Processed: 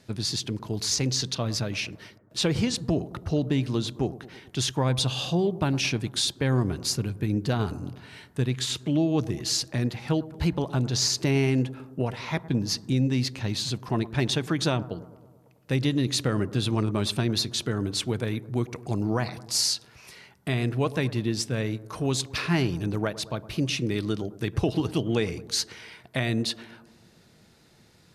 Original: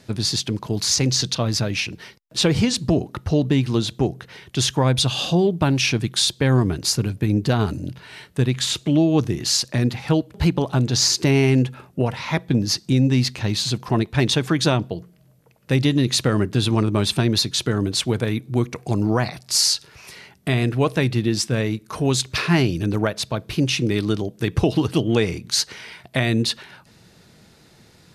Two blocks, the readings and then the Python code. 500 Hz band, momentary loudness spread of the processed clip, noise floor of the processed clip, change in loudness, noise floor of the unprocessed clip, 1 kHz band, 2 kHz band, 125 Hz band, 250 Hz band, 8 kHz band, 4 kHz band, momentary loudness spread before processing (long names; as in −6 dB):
−6.5 dB, 7 LU, −58 dBFS, −6.5 dB, −53 dBFS, −6.5 dB, −6.5 dB, −6.5 dB, −6.5 dB, −6.5 dB, −6.5 dB, 7 LU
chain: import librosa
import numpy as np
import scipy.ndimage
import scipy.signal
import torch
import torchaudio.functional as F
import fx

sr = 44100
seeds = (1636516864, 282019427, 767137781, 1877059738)

y = fx.echo_bbd(x, sr, ms=109, stages=1024, feedback_pct=63, wet_db=-17)
y = y * 10.0 ** (-6.5 / 20.0)